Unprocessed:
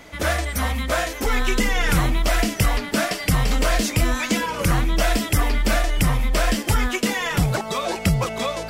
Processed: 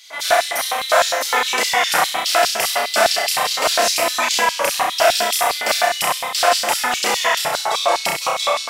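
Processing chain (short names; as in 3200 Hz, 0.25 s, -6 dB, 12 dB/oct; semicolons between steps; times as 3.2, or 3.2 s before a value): flutter echo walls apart 5.6 m, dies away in 0.78 s; LFO high-pass square 4.9 Hz 740–4000 Hz; gain +3 dB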